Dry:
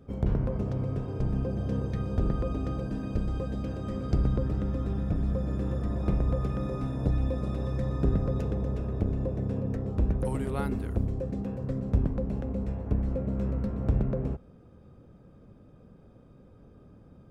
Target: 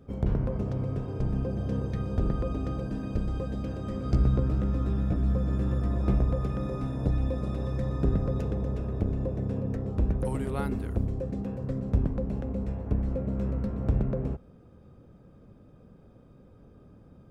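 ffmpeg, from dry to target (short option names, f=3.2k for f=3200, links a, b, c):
-filter_complex "[0:a]asettb=1/sr,asplit=3[a][b][c];[a]atrim=end=4.044[d];[b]atrim=start=4.04:end=6.25,asetpts=PTS-STARTPTS,afade=t=in:d=0.004:c=qsin,afade=t=out:st=2.206:d=0.004:c=qsin,asplit=2[e][f];[f]adelay=16,volume=-5dB[g];[e][g]amix=inputs=2:normalize=0,atrim=end_sample=97461[h];[c]atrim=start=6.246[i];[d][h]acrossfade=d=0.004:c1=hsin:c2=qsin[j];[j][i]acrossfade=d=0.004:c1=qsin:c2=hsin"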